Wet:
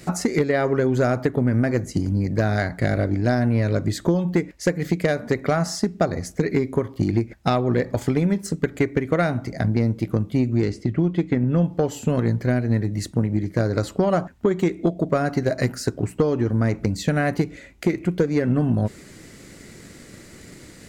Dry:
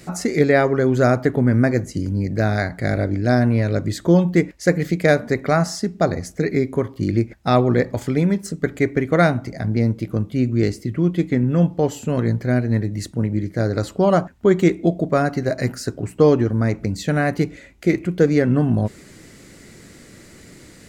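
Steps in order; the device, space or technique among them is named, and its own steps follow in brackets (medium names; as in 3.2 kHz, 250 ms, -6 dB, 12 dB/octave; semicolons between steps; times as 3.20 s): drum-bus smash (transient shaper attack +6 dB, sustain 0 dB; compression 10:1, threshold -14 dBFS, peak gain reduction 11 dB; saturation -9 dBFS, distortion -20 dB); 10.65–11.64 s: distance through air 74 m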